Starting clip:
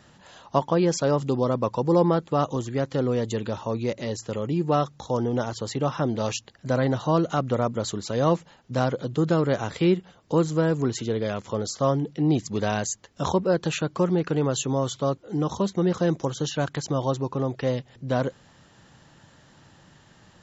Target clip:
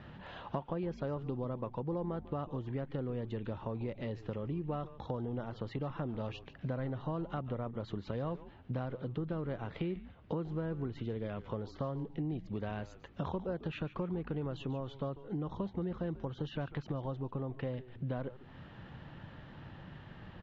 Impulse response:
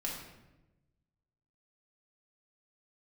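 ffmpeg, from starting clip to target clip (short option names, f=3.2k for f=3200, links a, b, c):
-filter_complex "[0:a]lowpass=f=3.2k:w=0.5412,lowpass=f=3.2k:w=1.3066,lowshelf=f=190:g=7,acompressor=threshold=-37dB:ratio=6,asplit=4[a][b][c][d];[b]adelay=144,afreqshift=-130,volume=-14.5dB[e];[c]adelay=288,afreqshift=-260,volume=-23.4dB[f];[d]adelay=432,afreqshift=-390,volume=-32.2dB[g];[a][e][f][g]amix=inputs=4:normalize=0,volume=1dB"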